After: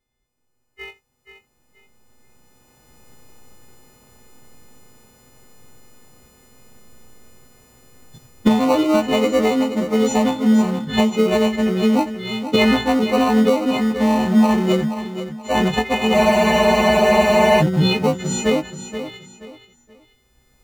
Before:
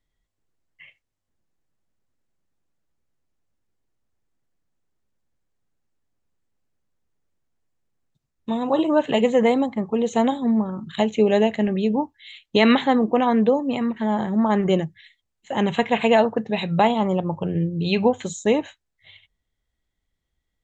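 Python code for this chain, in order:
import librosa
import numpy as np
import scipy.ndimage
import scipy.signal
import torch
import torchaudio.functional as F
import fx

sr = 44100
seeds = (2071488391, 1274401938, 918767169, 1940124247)

p1 = fx.freq_snap(x, sr, grid_st=3)
p2 = fx.recorder_agc(p1, sr, target_db=-7.0, rise_db_per_s=9.8, max_gain_db=30)
p3 = fx.sample_hold(p2, sr, seeds[0], rate_hz=1700.0, jitter_pct=0)
p4 = p2 + F.gain(torch.from_numpy(p3), -5.0).numpy()
p5 = fx.high_shelf(p4, sr, hz=5900.0, db=-6.5)
p6 = p5 + fx.echo_feedback(p5, sr, ms=478, feedback_pct=30, wet_db=-10.5, dry=0)
p7 = fx.spec_freeze(p6, sr, seeds[1], at_s=16.17, hold_s=1.45)
y = F.gain(torch.from_numpy(p7), -3.0).numpy()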